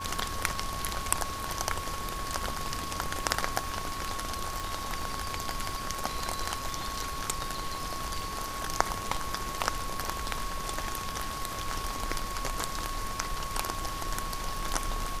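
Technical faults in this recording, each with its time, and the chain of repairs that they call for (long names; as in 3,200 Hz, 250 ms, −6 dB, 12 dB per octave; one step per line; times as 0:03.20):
surface crackle 27 per second −40 dBFS
whistle 1,100 Hz −37 dBFS
0:04.60: click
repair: click removal
notch filter 1,100 Hz, Q 30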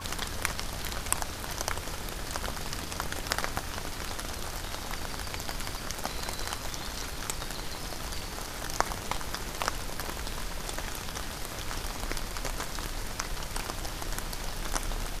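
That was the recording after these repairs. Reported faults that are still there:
none of them is left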